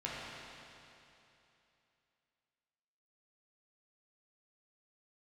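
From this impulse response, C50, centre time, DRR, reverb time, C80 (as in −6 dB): −3.5 dB, 180 ms, −7.0 dB, 2.9 s, −1.5 dB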